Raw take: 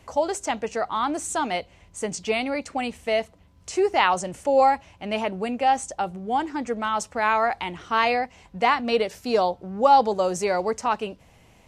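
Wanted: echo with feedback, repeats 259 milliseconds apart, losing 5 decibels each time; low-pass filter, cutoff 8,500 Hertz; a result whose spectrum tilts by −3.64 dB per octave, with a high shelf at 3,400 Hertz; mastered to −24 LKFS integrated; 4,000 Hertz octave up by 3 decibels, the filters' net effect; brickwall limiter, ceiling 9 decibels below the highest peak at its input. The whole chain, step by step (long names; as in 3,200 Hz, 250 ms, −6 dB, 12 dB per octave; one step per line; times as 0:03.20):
low-pass filter 8,500 Hz
high-shelf EQ 3,400 Hz −4.5 dB
parametric band 4,000 Hz +7.5 dB
brickwall limiter −13.5 dBFS
repeating echo 259 ms, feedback 56%, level −5 dB
level +0.5 dB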